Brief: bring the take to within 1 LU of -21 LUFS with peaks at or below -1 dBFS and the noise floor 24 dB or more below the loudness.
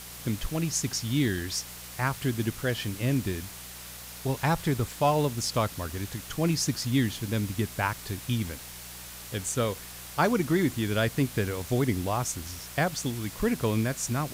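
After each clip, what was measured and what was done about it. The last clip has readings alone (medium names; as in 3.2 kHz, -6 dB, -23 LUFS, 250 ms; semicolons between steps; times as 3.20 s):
hum 60 Hz; highest harmonic 180 Hz; hum level -49 dBFS; noise floor -43 dBFS; noise floor target -53 dBFS; loudness -29.0 LUFS; peak level -11.5 dBFS; loudness target -21.0 LUFS
-> de-hum 60 Hz, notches 3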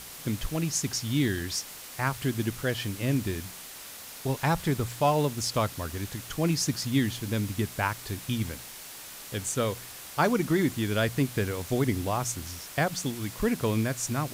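hum not found; noise floor -44 dBFS; noise floor target -53 dBFS
-> noise reduction 9 dB, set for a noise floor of -44 dBFS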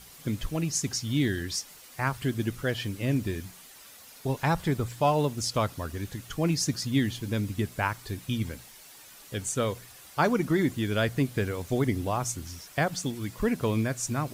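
noise floor -50 dBFS; noise floor target -54 dBFS
-> noise reduction 6 dB, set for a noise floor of -50 dBFS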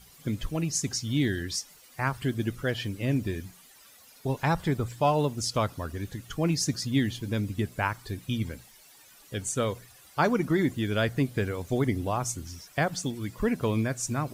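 noise floor -55 dBFS; loudness -29.5 LUFS; peak level -11.5 dBFS; loudness target -21.0 LUFS
-> trim +8.5 dB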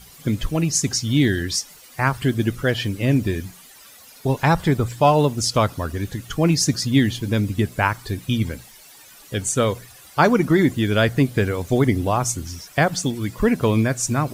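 loudness -21.0 LUFS; peak level -3.0 dBFS; noise floor -46 dBFS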